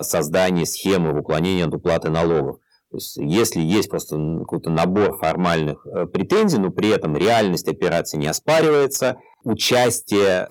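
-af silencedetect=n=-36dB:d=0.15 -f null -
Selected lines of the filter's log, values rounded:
silence_start: 2.55
silence_end: 2.94 | silence_duration: 0.39
silence_start: 9.17
silence_end: 9.45 | silence_duration: 0.28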